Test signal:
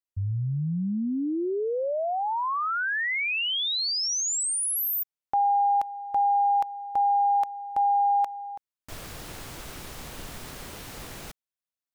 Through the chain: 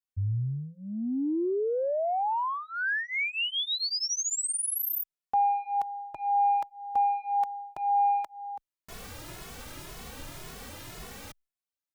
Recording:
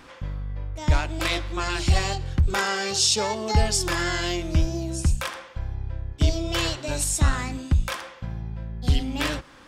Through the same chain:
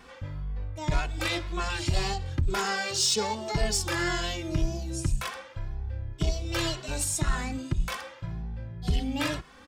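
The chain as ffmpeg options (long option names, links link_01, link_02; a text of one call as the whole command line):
ffmpeg -i in.wav -filter_complex "[0:a]asoftclip=type=tanh:threshold=-14dB,asplit=2[link_01][link_02];[link_02]adelay=2.3,afreqshift=1.9[link_03];[link_01][link_03]amix=inputs=2:normalize=1" out.wav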